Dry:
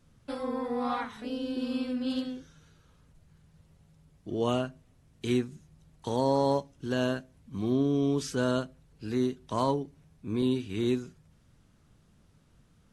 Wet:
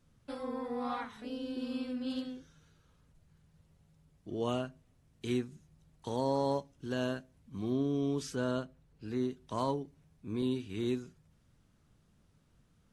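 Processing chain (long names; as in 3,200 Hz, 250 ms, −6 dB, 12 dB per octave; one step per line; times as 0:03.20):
0:08.36–0:09.31: high-shelf EQ 4,000 Hz −6 dB
level −5.5 dB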